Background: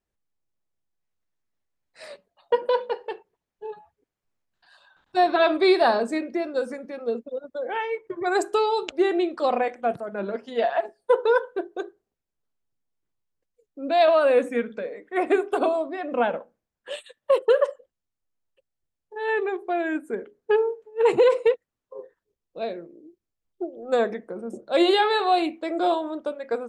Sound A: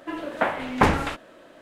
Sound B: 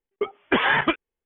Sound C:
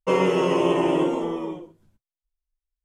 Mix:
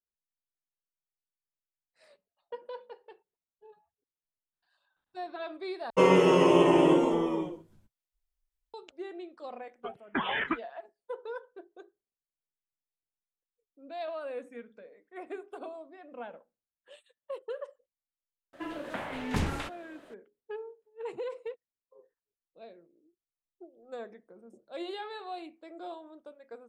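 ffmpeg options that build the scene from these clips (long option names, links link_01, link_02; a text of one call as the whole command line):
ffmpeg -i bed.wav -i cue0.wav -i cue1.wav -i cue2.wav -filter_complex "[0:a]volume=-19.5dB[link_01];[2:a]asplit=2[link_02][link_03];[link_03]afreqshift=-2.6[link_04];[link_02][link_04]amix=inputs=2:normalize=1[link_05];[1:a]acrossover=split=240|3000[link_06][link_07][link_08];[link_07]acompressor=threshold=-29dB:ratio=6:attack=3.2:release=140:knee=2.83:detection=peak[link_09];[link_06][link_09][link_08]amix=inputs=3:normalize=0[link_10];[link_01]asplit=2[link_11][link_12];[link_11]atrim=end=5.904[link_13];[3:a]atrim=end=2.84,asetpts=PTS-STARTPTS,volume=-0.5dB[link_14];[link_12]atrim=start=8.736[link_15];[link_05]atrim=end=1.25,asetpts=PTS-STARTPTS,volume=-7dB,afade=type=in:duration=0.004:curve=hsin,afade=type=out:start_time=1.246:duration=0.004:curve=hsin,adelay=9630[link_16];[link_10]atrim=end=1.61,asetpts=PTS-STARTPTS,volume=-5dB,afade=type=in:duration=0.004:curve=hsin,afade=type=out:start_time=1.606:duration=0.004:curve=hsin,adelay=18530[link_17];[link_13][link_14]acrossfade=duration=0.004:curve1=hsin:curve2=hsin[link_18];[link_18][link_15]acrossfade=duration=0.004:curve1=hsin:curve2=hsin[link_19];[link_19][link_16][link_17]amix=inputs=3:normalize=0" out.wav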